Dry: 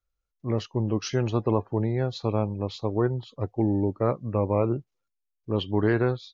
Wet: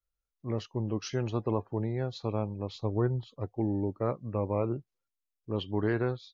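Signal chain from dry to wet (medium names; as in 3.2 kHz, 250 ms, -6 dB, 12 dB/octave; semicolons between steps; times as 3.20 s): 2.75–3.28 s: bass shelf 130 Hz +9 dB; trim -6 dB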